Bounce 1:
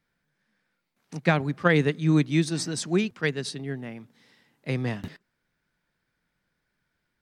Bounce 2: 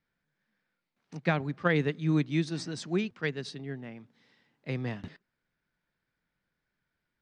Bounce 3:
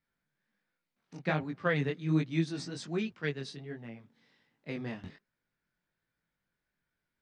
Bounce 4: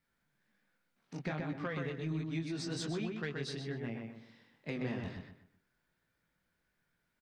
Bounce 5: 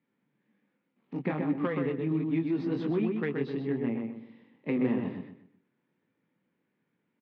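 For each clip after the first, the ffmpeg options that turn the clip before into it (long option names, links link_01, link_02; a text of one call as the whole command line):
ffmpeg -i in.wav -af "lowpass=5300,volume=-5.5dB" out.wav
ffmpeg -i in.wav -af "flanger=delay=17.5:depth=5.2:speed=1.3" out.wav
ffmpeg -i in.wav -filter_complex "[0:a]acompressor=threshold=-37dB:ratio=20,asoftclip=type=tanh:threshold=-30.5dB,asplit=2[link_01][link_02];[link_02]adelay=126,lowpass=frequency=3200:poles=1,volume=-3.5dB,asplit=2[link_03][link_04];[link_04]adelay=126,lowpass=frequency=3200:poles=1,volume=0.33,asplit=2[link_05][link_06];[link_06]adelay=126,lowpass=frequency=3200:poles=1,volume=0.33,asplit=2[link_07][link_08];[link_08]adelay=126,lowpass=frequency=3200:poles=1,volume=0.33[link_09];[link_03][link_05][link_07][link_09]amix=inputs=4:normalize=0[link_10];[link_01][link_10]amix=inputs=2:normalize=0,volume=3.5dB" out.wav
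ffmpeg -i in.wav -filter_complex "[0:a]asplit=2[link_01][link_02];[link_02]adynamicsmooth=sensitivity=7:basefreq=860,volume=3dB[link_03];[link_01][link_03]amix=inputs=2:normalize=0,acrusher=bits=9:mode=log:mix=0:aa=0.000001,highpass=frequency=150:width=0.5412,highpass=frequency=150:width=1.3066,equalizer=frequency=160:width_type=q:width=4:gain=-5,equalizer=frequency=270:width_type=q:width=4:gain=3,equalizer=frequency=660:width_type=q:width=4:gain=-8,equalizer=frequency=1500:width_type=q:width=4:gain=-9,lowpass=frequency=2900:width=0.5412,lowpass=frequency=2900:width=1.3066,volume=3dB" out.wav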